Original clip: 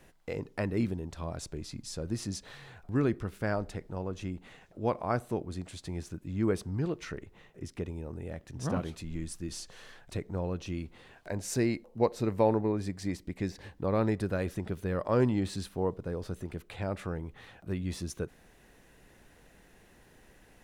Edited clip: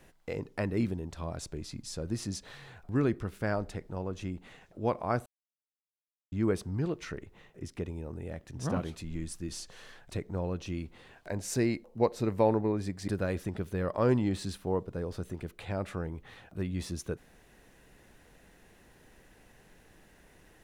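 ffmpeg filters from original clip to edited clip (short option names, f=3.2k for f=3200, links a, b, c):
-filter_complex "[0:a]asplit=4[a][b][c][d];[a]atrim=end=5.26,asetpts=PTS-STARTPTS,afade=t=out:st=5.256:d=0.004:c=hsin[e];[b]atrim=start=5.26:end=6.32,asetpts=PTS-STARTPTS,volume=0[f];[c]atrim=start=6.32:end=13.082,asetpts=PTS-STARTPTS,afade=t=in:d=0.004:c=hsin[g];[d]atrim=start=14.188[h];[e][f][g]concat=n=3:v=0:a=1[i];[i][h]acrossfade=d=0.004:c1=hsin:c2=hsin"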